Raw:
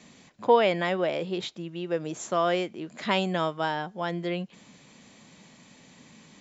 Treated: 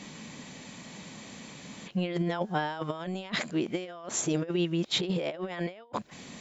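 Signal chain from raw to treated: whole clip reversed; negative-ratio compressor -33 dBFS, ratio -0.5; gain +2 dB

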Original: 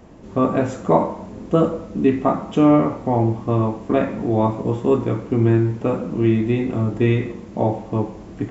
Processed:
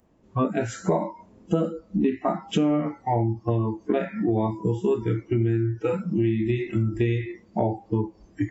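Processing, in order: spectral noise reduction 25 dB; dynamic EQ 1000 Hz, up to -4 dB, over -31 dBFS, Q 1.2; compressor 5:1, threshold -28 dBFS, peak gain reduction 15.5 dB; gain +7 dB

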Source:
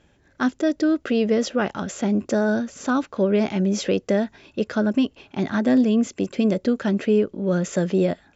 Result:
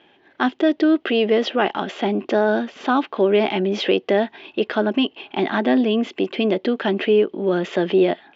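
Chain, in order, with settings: in parallel at -3 dB: limiter -19.5 dBFS, peak gain reduction 10 dB; on the sum: speaker cabinet 360–3600 Hz, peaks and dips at 360 Hz +4 dB, 540 Hz -7 dB, 780 Hz +4 dB, 1400 Hz -5 dB, 3100 Hz +6 dB; gain +4 dB

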